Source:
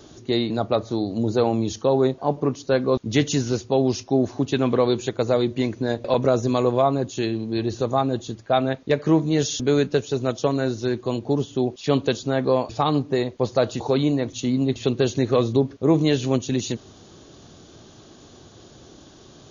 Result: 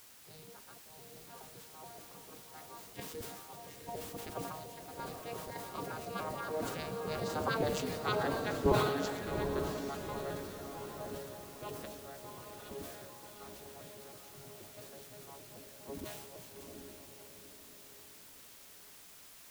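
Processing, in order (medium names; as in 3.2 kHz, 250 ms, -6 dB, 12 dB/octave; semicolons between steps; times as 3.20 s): vocoder on a broken chord bare fifth, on D3, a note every 150 ms; Doppler pass-by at 7.70 s, 21 m/s, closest 7.9 m; bass shelf 160 Hz +12 dB; in parallel at +2.5 dB: level held to a coarse grid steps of 18 dB; on the sum: spectral gate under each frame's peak -15 dB weak; word length cut 10-bit, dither triangular; on a send: echo that smears into a reverb 812 ms, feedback 40%, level -4 dB; on the sum: decay stretcher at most 39 dB/s; trim +3 dB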